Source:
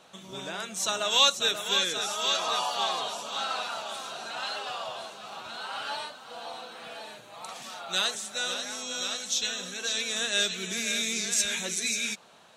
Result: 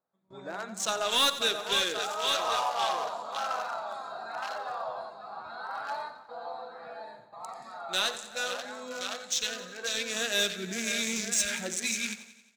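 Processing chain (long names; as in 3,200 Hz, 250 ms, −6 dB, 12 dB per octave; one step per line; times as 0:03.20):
adaptive Wiener filter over 15 samples
noise reduction from a noise print of the clip's start 8 dB
noise gate with hold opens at −43 dBFS
automatic gain control gain up to 3 dB
soft clipping −19.5 dBFS, distortion −10 dB
repeating echo 89 ms, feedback 57%, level −14 dB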